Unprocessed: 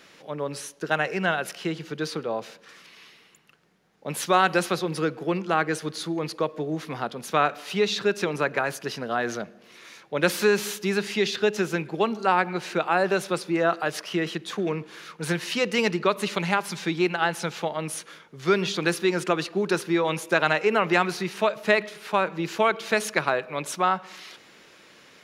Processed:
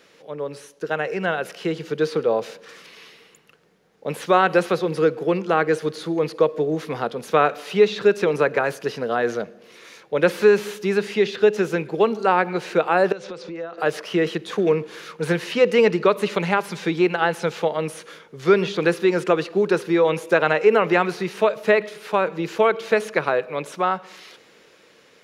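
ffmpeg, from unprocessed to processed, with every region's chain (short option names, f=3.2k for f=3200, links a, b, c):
-filter_complex "[0:a]asettb=1/sr,asplit=3[a][b][c];[a]atrim=end=13.124[d];[b]atrim=start=13.12:end=13.78,asetpts=PTS-STARTPTS,afade=t=in:d=0.004:c=qsin,afade=t=out:st=0.656:d=0.004:c=qsin,lowpass=f=6.4k:w=0.5412,lowpass=f=6.4k:w=1.3066,acompressor=threshold=-35dB:ratio=8:attack=3.2:release=140:knee=1:detection=peak,aeval=exprs='val(0)+0.00355*sin(2*PI*510*n/s)':c=same[e];[c]atrim=start=13.776[f];[d][e]acrossfade=d=0.004:c1=hsin:c2=qsin[g];[g][f]acrossfade=d=0.004:c1=qsin:c2=hsin,acrossover=split=3100[h][i];[i]acompressor=threshold=-41dB:ratio=4:attack=1:release=60[j];[h][j]amix=inputs=2:normalize=0,equalizer=f=470:t=o:w=0.46:g=8.5,dynaudnorm=f=330:g=9:m=11.5dB,volume=-3dB"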